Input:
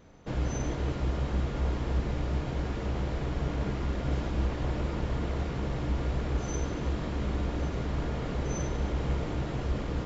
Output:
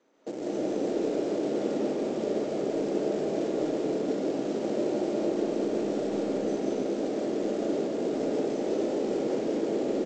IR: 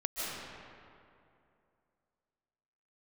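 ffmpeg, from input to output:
-filter_complex "[0:a]bandreject=f=60:t=h:w=6,bandreject=f=120:t=h:w=6,bandreject=f=180:t=h:w=6,bandreject=f=240:t=h:w=6,bandreject=f=300:t=h:w=6,bandreject=f=360:t=h:w=6,bandreject=f=420:t=h:w=6,bandreject=f=480:t=h:w=6,bandreject=f=540:t=h:w=6,afwtdn=0.0251,highpass=f=300:w=0.5412,highpass=f=300:w=1.3066,bandreject=f=700:w=22,acrossover=split=480|2100[a][b][c];[a]acontrast=61[d];[d][b][c]amix=inputs=3:normalize=0,alimiter=level_in=8.5dB:limit=-24dB:level=0:latency=1:release=266,volume=-8.5dB,aresample=16000,acrusher=bits=4:mode=log:mix=0:aa=0.000001,aresample=44100[e];[1:a]atrim=start_sample=2205[f];[e][f]afir=irnorm=-1:irlink=0,volume=7dB"

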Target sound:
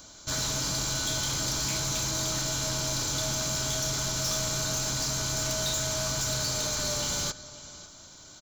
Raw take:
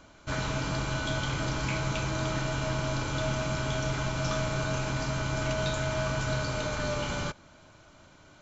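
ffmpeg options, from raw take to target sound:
-af "aexciter=amount=8.8:drive=2.2:freq=3.7k,aecho=1:1:551:0.0944,asoftclip=type=tanh:threshold=-25.5dB"

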